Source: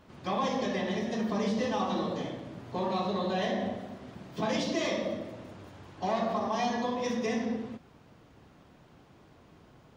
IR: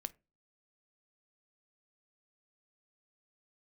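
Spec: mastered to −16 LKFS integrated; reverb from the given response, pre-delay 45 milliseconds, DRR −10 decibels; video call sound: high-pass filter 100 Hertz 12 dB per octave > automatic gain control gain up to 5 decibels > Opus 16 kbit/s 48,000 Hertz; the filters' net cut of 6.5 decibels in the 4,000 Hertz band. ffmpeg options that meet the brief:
-filter_complex "[0:a]equalizer=frequency=4000:width_type=o:gain=-8.5,asplit=2[link_01][link_02];[1:a]atrim=start_sample=2205,adelay=45[link_03];[link_02][link_03]afir=irnorm=-1:irlink=0,volume=12.5dB[link_04];[link_01][link_04]amix=inputs=2:normalize=0,highpass=100,dynaudnorm=maxgain=5dB,volume=6dB" -ar 48000 -c:a libopus -b:a 16k

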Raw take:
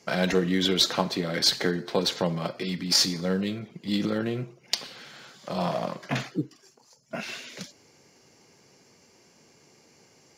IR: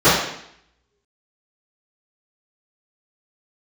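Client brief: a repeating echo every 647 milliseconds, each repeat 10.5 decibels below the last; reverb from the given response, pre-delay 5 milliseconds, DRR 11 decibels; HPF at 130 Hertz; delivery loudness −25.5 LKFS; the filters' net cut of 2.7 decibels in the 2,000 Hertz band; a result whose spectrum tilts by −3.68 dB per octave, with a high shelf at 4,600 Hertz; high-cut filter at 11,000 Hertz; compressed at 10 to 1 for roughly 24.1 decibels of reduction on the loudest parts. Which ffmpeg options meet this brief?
-filter_complex "[0:a]highpass=130,lowpass=11000,equalizer=frequency=2000:width_type=o:gain=-5,highshelf=frequency=4600:gain=8.5,acompressor=threshold=-39dB:ratio=10,aecho=1:1:647|1294|1941:0.299|0.0896|0.0269,asplit=2[link_01][link_02];[1:a]atrim=start_sample=2205,adelay=5[link_03];[link_02][link_03]afir=irnorm=-1:irlink=0,volume=-38dB[link_04];[link_01][link_04]amix=inputs=2:normalize=0,volume=17.5dB"

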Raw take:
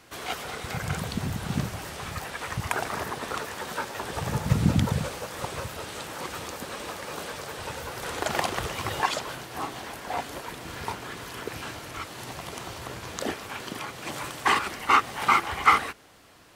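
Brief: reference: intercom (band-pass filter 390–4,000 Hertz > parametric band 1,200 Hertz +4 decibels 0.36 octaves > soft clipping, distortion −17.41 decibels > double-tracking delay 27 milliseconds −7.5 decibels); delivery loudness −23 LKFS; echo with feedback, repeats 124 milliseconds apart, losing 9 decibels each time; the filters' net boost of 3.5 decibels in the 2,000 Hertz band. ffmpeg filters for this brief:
ffmpeg -i in.wav -filter_complex "[0:a]highpass=390,lowpass=4000,equalizer=frequency=1200:width_type=o:width=0.36:gain=4,equalizer=frequency=2000:width_type=o:gain=4,aecho=1:1:124|248|372|496:0.355|0.124|0.0435|0.0152,asoftclip=threshold=-7.5dB,asplit=2[link_01][link_02];[link_02]adelay=27,volume=-7.5dB[link_03];[link_01][link_03]amix=inputs=2:normalize=0,volume=4dB" out.wav

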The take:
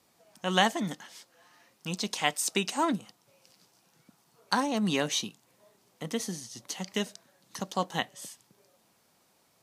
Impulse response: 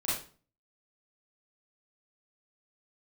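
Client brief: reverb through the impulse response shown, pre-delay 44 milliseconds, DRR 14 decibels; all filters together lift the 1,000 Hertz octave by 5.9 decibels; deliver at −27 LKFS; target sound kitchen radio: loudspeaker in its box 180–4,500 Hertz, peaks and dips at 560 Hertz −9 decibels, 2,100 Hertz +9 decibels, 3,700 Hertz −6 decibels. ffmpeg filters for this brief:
-filter_complex "[0:a]equalizer=frequency=1000:width_type=o:gain=8,asplit=2[link_01][link_02];[1:a]atrim=start_sample=2205,adelay=44[link_03];[link_02][link_03]afir=irnorm=-1:irlink=0,volume=-20.5dB[link_04];[link_01][link_04]amix=inputs=2:normalize=0,highpass=180,equalizer=frequency=560:width_type=q:width=4:gain=-9,equalizer=frequency=2100:width_type=q:width=4:gain=9,equalizer=frequency=3700:width_type=q:width=4:gain=-6,lowpass=frequency=4500:width=0.5412,lowpass=frequency=4500:width=1.3066,volume=1dB"

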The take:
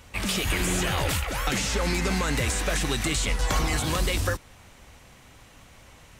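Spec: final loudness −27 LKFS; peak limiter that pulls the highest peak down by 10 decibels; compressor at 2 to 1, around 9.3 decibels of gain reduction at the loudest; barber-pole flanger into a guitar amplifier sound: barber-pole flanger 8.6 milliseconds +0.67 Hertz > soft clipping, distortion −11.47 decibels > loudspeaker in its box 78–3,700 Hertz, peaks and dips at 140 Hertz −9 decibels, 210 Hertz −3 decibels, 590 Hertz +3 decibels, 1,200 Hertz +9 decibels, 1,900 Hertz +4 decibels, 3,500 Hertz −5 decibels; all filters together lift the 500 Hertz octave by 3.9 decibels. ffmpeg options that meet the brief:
ffmpeg -i in.wav -filter_complex "[0:a]equalizer=frequency=500:width_type=o:gain=3,acompressor=threshold=-38dB:ratio=2,alimiter=level_in=4dB:limit=-24dB:level=0:latency=1,volume=-4dB,asplit=2[link_01][link_02];[link_02]adelay=8.6,afreqshift=0.67[link_03];[link_01][link_03]amix=inputs=2:normalize=1,asoftclip=threshold=-39.5dB,highpass=78,equalizer=frequency=140:width_type=q:width=4:gain=-9,equalizer=frequency=210:width_type=q:width=4:gain=-3,equalizer=frequency=590:width_type=q:width=4:gain=3,equalizer=frequency=1200:width_type=q:width=4:gain=9,equalizer=frequency=1900:width_type=q:width=4:gain=4,equalizer=frequency=3500:width_type=q:width=4:gain=-5,lowpass=frequency=3700:width=0.5412,lowpass=frequency=3700:width=1.3066,volume=19dB" out.wav

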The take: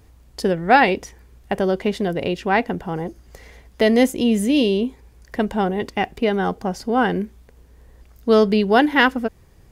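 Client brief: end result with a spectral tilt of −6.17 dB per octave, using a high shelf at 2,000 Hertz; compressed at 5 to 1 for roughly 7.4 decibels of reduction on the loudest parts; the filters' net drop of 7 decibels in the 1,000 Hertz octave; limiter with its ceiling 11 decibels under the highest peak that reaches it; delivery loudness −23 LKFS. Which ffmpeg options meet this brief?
ffmpeg -i in.wav -af "equalizer=frequency=1000:width_type=o:gain=-8.5,highshelf=frequency=2000:gain=-8.5,acompressor=threshold=-20dB:ratio=5,volume=8.5dB,alimiter=limit=-13.5dB:level=0:latency=1" out.wav

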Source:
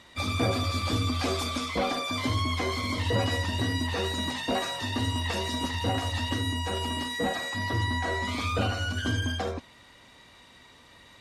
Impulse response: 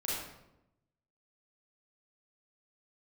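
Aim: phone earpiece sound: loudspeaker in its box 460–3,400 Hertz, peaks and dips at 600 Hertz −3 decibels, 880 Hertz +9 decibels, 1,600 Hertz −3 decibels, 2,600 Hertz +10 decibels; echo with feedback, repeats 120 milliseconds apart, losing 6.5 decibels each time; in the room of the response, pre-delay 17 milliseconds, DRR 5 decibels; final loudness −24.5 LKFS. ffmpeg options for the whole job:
-filter_complex "[0:a]aecho=1:1:120|240|360|480|600|720:0.473|0.222|0.105|0.0491|0.0231|0.0109,asplit=2[link_01][link_02];[1:a]atrim=start_sample=2205,adelay=17[link_03];[link_02][link_03]afir=irnorm=-1:irlink=0,volume=-9.5dB[link_04];[link_01][link_04]amix=inputs=2:normalize=0,highpass=460,equalizer=frequency=600:width_type=q:width=4:gain=-3,equalizer=frequency=880:width_type=q:width=4:gain=9,equalizer=frequency=1600:width_type=q:width=4:gain=-3,equalizer=frequency=2600:width_type=q:width=4:gain=10,lowpass=frequency=3400:width=0.5412,lowpass=frequency=3400:width=1.3066,volume=3dB"

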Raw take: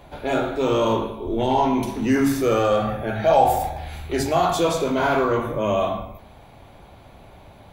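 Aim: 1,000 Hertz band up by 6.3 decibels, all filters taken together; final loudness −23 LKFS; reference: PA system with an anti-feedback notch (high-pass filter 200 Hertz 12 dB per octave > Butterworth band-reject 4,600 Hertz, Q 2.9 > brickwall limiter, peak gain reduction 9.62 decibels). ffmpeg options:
ffmpeg -i in.wav -af "highpass=200,asuperstop=centerf=4600:order=8:qfactor=2.9,equalizer=frequency=1000:width_type=o:gain=8.5,volume=-2dB,alimiter=limit=-13dB:level=0:latency=1" out.wav

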